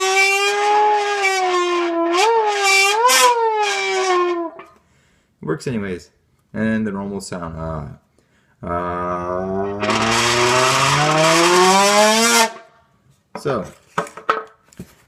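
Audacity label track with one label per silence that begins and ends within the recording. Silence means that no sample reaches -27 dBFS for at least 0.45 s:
4.600000	5.430000	silence
5.980000	6.550000	silence
7.920000	8.630000	silence
12.570000	13.350000	silence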